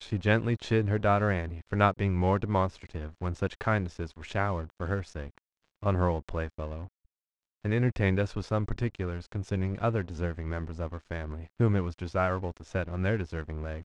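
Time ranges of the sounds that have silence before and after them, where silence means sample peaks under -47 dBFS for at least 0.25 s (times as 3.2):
5.82–6.88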